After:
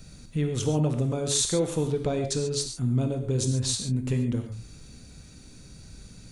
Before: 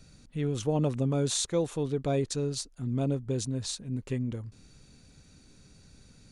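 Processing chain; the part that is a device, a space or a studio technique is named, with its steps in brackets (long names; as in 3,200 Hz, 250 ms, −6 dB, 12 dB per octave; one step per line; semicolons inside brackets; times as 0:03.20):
ASMR close-microphone chain (low-shelf EQ 180 Hz +3.5 dB; downward compressor 4 to 1, threshold −28 dBFS, peak gain reduction 6.5 dB; high-shelf EQ 9,300 Hz +7.5 dB)
0:02.04–0:02.61: low-pass filter 8,400 Hz 12 dB per octave
reverb whose tail is shaped and stops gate 160 ms flat, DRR 4.5 dB
level +5 dB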